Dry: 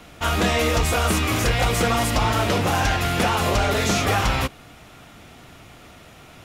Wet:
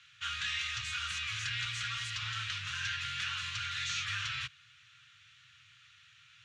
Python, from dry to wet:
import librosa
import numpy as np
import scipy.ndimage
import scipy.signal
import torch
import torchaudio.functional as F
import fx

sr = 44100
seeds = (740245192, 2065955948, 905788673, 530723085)

y = scipy.signal.sosfilt(scipy.signal.cheby2(4, 50, [220.0, 790.0], 'bandstop', fs=sr, output='sos'), x)
y = fx.cabinet(y, sr, low_hz=140.0, low_slope=24, high_hz=5900.0, hz=(160.0, 2100.0, 5100.0), db=(-5, -6, -7))
y = F.gain(torch.from_numpy(y), -6.5).numpy()